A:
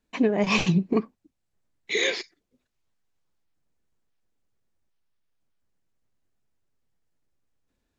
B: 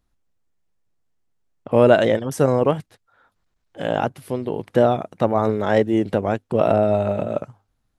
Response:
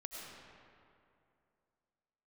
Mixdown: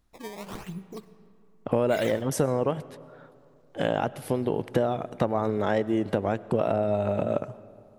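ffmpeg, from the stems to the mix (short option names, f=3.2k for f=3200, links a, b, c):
-filter_complex "[0:a]equalizer=f=260:w=3.5:g=-10.5,acrusher=samples=18:mix=1:aa=0.000001:lfo=1:lforange=28.8:lforate=0.92,volume=-16dB,asplit=2[a][b];[b]volume=-10.5dB[c];[1:a]acompressor=threshold=-24dB:ratio=6,volume=1.5dB,asplit=2[d][e];[e]volume=-13.5dB[f];[2:a]atrim=start_sample=2205[g];[c][f]amix=inputs=2:normalize=0[h];[h][g]afir=irnorm=-1:irlink=0[i];[a][d][i]amix=inputs=3:normalize=0"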